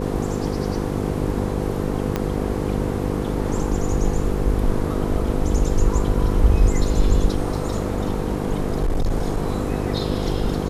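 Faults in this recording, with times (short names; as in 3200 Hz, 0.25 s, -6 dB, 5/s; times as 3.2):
buzz 50 Hz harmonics 10 -25 dBFS
2.16 pop -9 dBFS
7.44–9.7 clipped -16 dBFS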